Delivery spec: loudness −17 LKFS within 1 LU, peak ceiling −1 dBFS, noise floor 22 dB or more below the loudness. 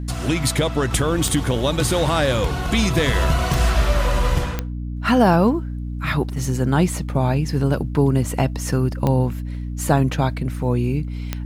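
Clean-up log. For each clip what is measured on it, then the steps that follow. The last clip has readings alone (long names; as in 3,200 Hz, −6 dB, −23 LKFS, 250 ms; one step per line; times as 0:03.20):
number of clicks 5; mains hum 60 Hz; hum harmonics up to 300 Hz; level of the hum −24 dBFS; integrated loudness −20.5 LKFS; sample peak −3.5 dBFS; target loudness −17.0 LKFS
→ click removal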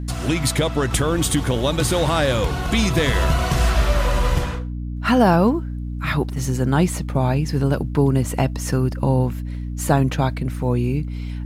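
number of clicks 0; mains hum 60 Hz; hum harmonics up to 300 Hz; level of the hum −24 dBFS
→ hum removal 60 Hz, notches 5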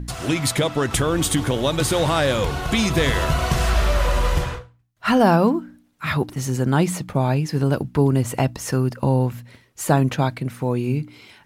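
mains hum none found; integrated loudness −21.0 LKFS; sample peak −3.5 dBFS; target loudness −17.0 LKFS
→ level +4 dB
brickwall limiter −1 dBFS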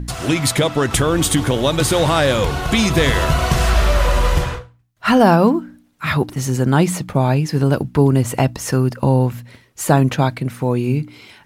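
integrated loudness −17.0 LKFS; sample peak −1.0 dBFS; background noise floor −53 dBFS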